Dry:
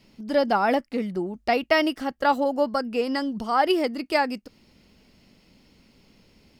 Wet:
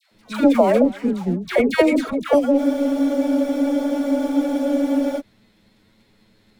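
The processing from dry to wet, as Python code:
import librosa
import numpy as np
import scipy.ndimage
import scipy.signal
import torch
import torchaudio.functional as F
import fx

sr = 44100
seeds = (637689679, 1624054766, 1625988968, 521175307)

p1 = fx.high_shelf(x, sr, hz=2500.0, db=-8.5)
p2 = fx.echo_feedback(p1, sr, ms=252, feedback_pct=32, wet_db=-22)
p3 = fx.env_flanger(p2, sr, rest_ms=10.3, full_db=-23.0)
p4 = fx.leveller(p3, sr, passes=1)
p5 = fx.dispersion(p4, sr, late='lows', ms=117.0, hz=930.0)
p6 = fx.rider(p5, sr, range_db=4, speed_s=2.0)
p7 = p5 + (p6 * 10.0 ** (0.5 / 20.0))
p8 = fx.formant_shift(p7, sr, semitones=-4)
p9 = fx.bass_treble(p8, sr, bass_db=-5, treble_db=7)
p10 = fx.spec_freeze(p9, sr, seeds[0], at_s=2.61, hold_s=2.58)
y = p10 * 10.0 ** (1.0 / 20.0)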